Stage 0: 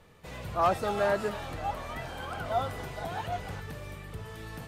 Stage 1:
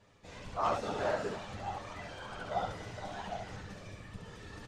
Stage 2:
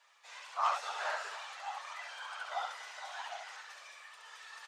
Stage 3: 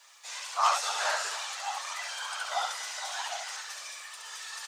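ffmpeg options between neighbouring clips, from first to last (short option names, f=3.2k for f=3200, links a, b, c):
-af "afftfilt=real='hypot(re,im)*cos(2*PI*random(0))':imag='hypot(re,im)*sin(2*PI*random(1))':win_size=512:overlap=0.75,lowpass=f=6.4k:t=q:w=1.7,aecho=1:1:10|70:0.562|0.631,volume=-2.5dB"
-af "highpass=f=890:w=0.5412,highpass=f=890:w=1.3066,volume=3dB"
-af "bass=f=250:g=-6,treble=f=4k:g=13,volume=6dB"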